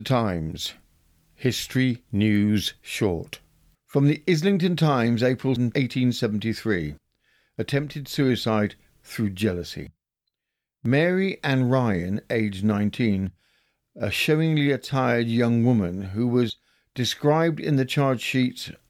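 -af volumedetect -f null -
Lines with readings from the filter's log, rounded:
mean_volume: -23.9 dB
max_volume: -9.3 dB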